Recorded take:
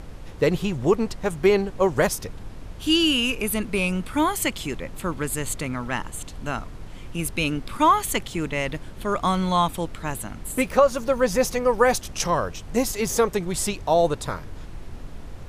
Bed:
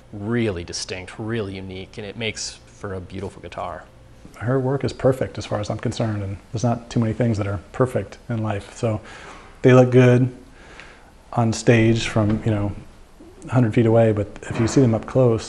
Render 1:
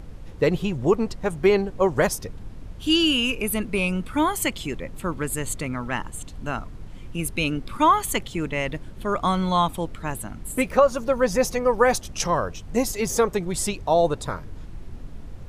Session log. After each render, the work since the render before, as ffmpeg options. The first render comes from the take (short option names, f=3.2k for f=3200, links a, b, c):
-af "afftdn=nr=6:nf=-39"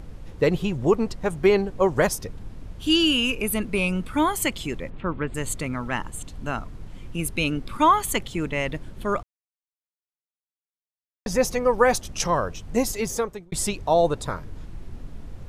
-filter_complex "[0:a]asplit=3[a][b][c];[a]afade=t=out:st=4.89:d=0.02[d];[b]lowpass=f=3.2k:w=0.5412,lowpass=f=3.2k:w=1.3066,afade=t=in:st=4.89:d=0.02,afade=t=out:st=5.34:d=0.02[e];[c]afade=t=in:st=5.34:d=0.02[f];[d][e][f]amix=inputs=3:normalize=0,asplit=4[g][h][i][j];[g]atrim=end=9.23,asetpts=PTS-STARTPTS,afade=t=out:st=9.226:d=0.004:c=hsin[k];[h]atrim=start=9.23:end=11.26,asetpts=PTS-STARTPTS,volume=0[l];[i]atrim=start=11.26:end=13.52,asetpts=PTS-STARTPTS,afade=t=in:d=0.004:c=hsin,afade=t=out:st=1.67:d=0.59[m];[j]atrim=start=13.52,asetpts=PTS-STARTPTS,afade=t=in:d=0.004:c=hsin[n];[k][l][m][n]concat=n=4:v=0:a=1"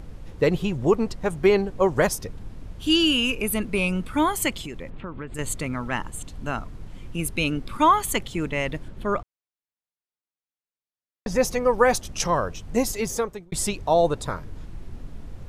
-filter_complex "[0:a]asettb=1/sr,asplit=3[a][b][c];[a]atrim=end=4.604[d];[b]atrim=start=4.6:end=5.39,asetpts=PTS-STARTPTS,afade=t=in:d=0.004:c=qsin,afade=t=out:st=0.786:d=0.004:c=qsin,acompressor=threshold=-30dB:ratio=6:attack=3.2:release=140:knee=1:detection=peak[e];[c]atrim=start=5.386[f];[d][e]acrossfade=d=0.004:c1=hsin:c2=qsin[g];[g][f]acrossfade=d=0.004:c1=qsin:c2=hsin,asettb=1/sr,asplit=3[h][i][j];[h]atrim=end=8.884[k];[i]atrim=start=8.88:end=11.36,asetpts=PTS-STARTPTS,afade=t=in:d=0.004:c=qsin,afade=t=out:st=2.476:d=0.004:c=qsin,aemphasis=mode=reproduction:type=cd[l];[j]atrim=start=11.356[m];[k][l]acrossfade=d=0.004:c1=hsin:c2=qsin[n];[n][m]acrossfade=d=0.004:c1=qsin:c2=hsin"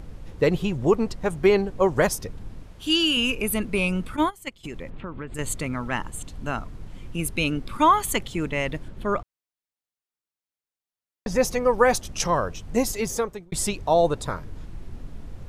-filter_complex "[0:a]asettb=1/sr,asplit=3[a][b][c];[a]atrim=end=2.624[d];[b]atrim=start=2.62:end=3.17,asetpts=PTS-STARTPTS,afade=t=in:d=0.004:c=qsin,afade=t=out:st=0.546:d=0.004:c=qsin,lowshelf=f=300:g=-8[e];[c]atrim=start=3.166[f];[d][e]acrossfade=d=0.004:c1=hsin:c2=qsin[g];[g][f]acrossfade=d=0.004:c1=qsin:c2=hsin,asplit=3[h][i][j];[h]afade=t=out:st=4.15:d=0.02[k];[i]agate=range=-20dB:threshold=-21dB:ratio=16:release=100:detection=peak,afade=t=in:st=4.15:d=0.02,afade=t=out:st=4.63:d=0.02[l];[j]afade=t=in:st=4.63:d=0.02[m];[k][l][m]amix=inputs=3:normalize=0"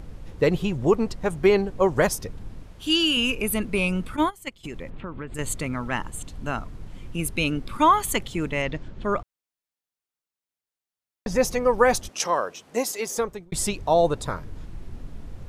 -filter_complex "[0:a]asettb=1/sr,asplit=3[a][b][c];[a]atrim=end=8.624[d];[b]atrim=start=8.62:end=9.04,asetpts=PTS-STARTPTS,afade=t=in:d=0.004:c=qsin,afade=t=out:st=0.416:d=0.004:c=qsin,lowpass=f=6.7k:w=0.5412,lowpass=f=6.7k:w=1.3066[e];[c]atrim=start=9.036[f];[d][e]acrossfade=d=0.004:c1=hsin:c2=qsin[g];[g][f]acrossfade=d=0.004:c1=qsin:c2=hsin,asettb=1/sr,asplit=3[h][i][j];[h]atrim=end=12.094[k];[i]atrim=start=12.09:end=13.18,asetpts=PTS-STARTPTS,afade=t=in:d=0.004:c=qsin,afade=t=out:st=1.086:d=0.004:c=qsin,highpass=360[l];[j]atrim=start=13.176[m];[k][l]acrossfade=d=0.004:c1=hsin:c2=qsin[n];[n][m]acrossfade=d=0.004:c1=qsin:c2=hsin"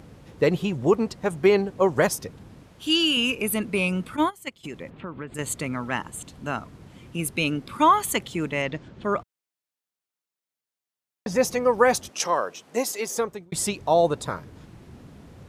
-af "highpass=110"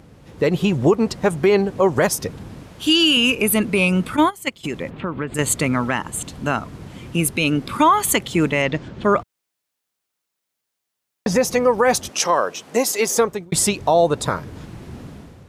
-af "alimiter=limit=-16.5dB:level=0:latency=1:release=218,dynaudnorm=f=110:g=7:m=10dB"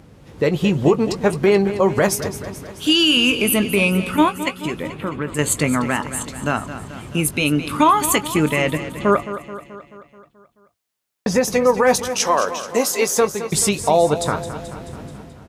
-filter_complex "[0:a]asplit=2[a][b];[b]adelay=20,volume=-12dB[c];[a][c]amix=inputs=2:normalize=0,aecho=1:1:216|432|648|864|1080|1296|1512:0.237|0.14|0.0825|0.0487|0.0287|0.017|0.01"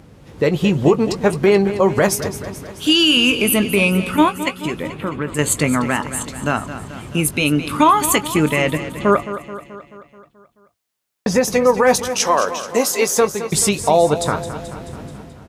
-af "volume=1.5dB"